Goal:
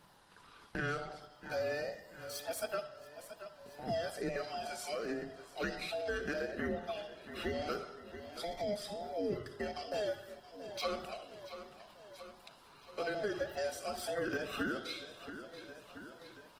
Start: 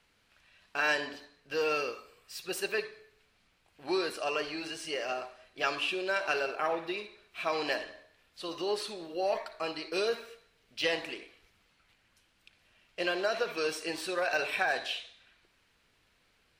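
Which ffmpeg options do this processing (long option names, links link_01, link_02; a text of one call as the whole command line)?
ffmpeg -i in.wav -af "afftfilt=real='real(if(between(b,1,1008),(2*floor((b-1)/48)+1)*48-b,b),0)':imag='imag(if(between(b,1,1008),(2*floor((b-1)/48)+1)*48-b,b),0)*if(between(b,1,1008),-1,1)':win_size=2048:overlap=0.75,equalizer=frequency=160:width_type=o:width=0.67:gain=8,equalizer=frequency=2500:width_type=o:width=0.67:gain=-12,equalizer=frequency=6300:width_type=o:width=0.67:gain=-5,aecho=1:1:678|1356|2034:0.0794|0.0381|0.0183,acompressor=threshold=-57dB:ratio=2,volume=10dB" -ar 48000 -c:a libopus -b:a 20k out.opus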